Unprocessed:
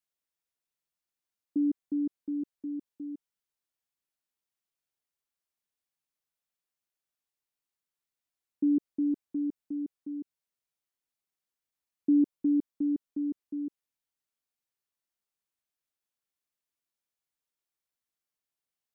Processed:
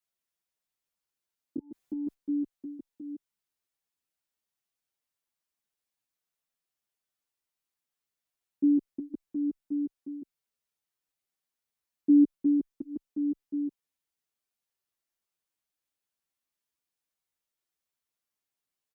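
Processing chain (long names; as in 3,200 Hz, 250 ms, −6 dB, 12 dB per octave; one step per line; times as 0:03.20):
0:01.58–0:02.14: compressor whose output falls as the input rises −34 dBFS, ratio −0.5
barber-pole flanger 8.3 ms −0.8 Hz
level +4 dB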